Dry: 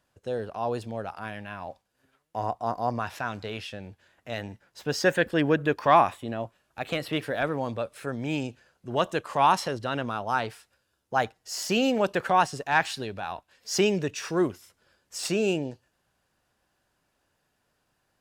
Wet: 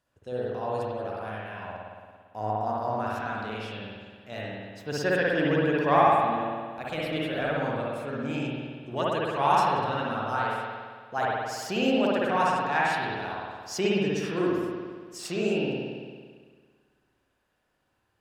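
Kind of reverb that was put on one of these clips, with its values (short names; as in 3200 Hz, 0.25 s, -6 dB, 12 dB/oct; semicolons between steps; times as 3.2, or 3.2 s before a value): spring tank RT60 1.7 s, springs 56 ms, chirp 45 ms, DRR -5.5 dB; gain -6.5 dB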